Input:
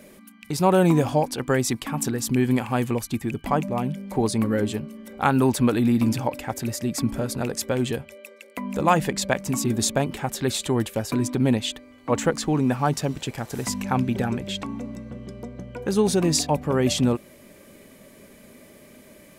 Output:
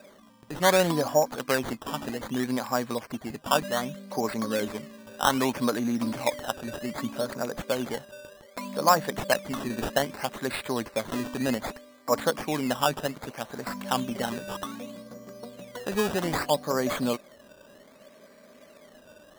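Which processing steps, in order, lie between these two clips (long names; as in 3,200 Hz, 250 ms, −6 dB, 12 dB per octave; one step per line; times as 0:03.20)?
loudspeaker in its box 220–6,000 Hz, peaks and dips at 350 Hz −5 dB, 610 Hz +7 dB, 1,100 Hz +6 dB, 1,600 Hz +5 dB, 2,700 Hz −7 dB, 4,500 Hz +5 dB
sample-and-hold swept by an LFO 14×, swing 100% 0.64 Hz
level −4.5 dB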